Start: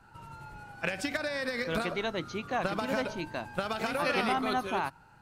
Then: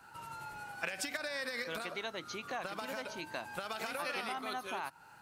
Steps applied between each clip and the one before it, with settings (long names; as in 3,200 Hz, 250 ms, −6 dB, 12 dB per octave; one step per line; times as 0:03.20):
high-shelf EQ 2,000 Hz −9 dB
downward compressor 6 to 1, threshold −39 dBFS, peak gain reduction 12.5 dB
spectral tilt +4 dB per octave
level +4 dB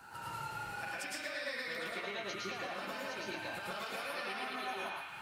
downward compressor 12 to 1, threshold −46 dBFS, peak gain reduction 15.5 dB
feedback echo with a band-pass in the loop 111 ms, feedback 81%, band-pass 2,300 Hz, level −4 dB
convolution reverb RT60 0.40 s, pre-delay 105 ms, DRR −4.5 dB
level +2.5 dB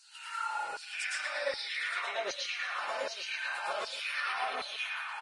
auto-filter high-pass saw down 1.3 Hz 440–4,900 Hz
single-tap delay 918 ms −16 dB
level +2.5 dB
Ogg Vorbis 32 kbit/s 22,050 Hz